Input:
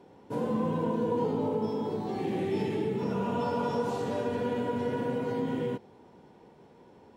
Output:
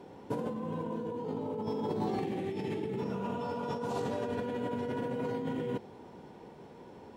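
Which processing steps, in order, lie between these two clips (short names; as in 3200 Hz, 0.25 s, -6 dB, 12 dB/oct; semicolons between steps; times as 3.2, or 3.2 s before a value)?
negative-ratio compressor -35 dBFS, ratio -1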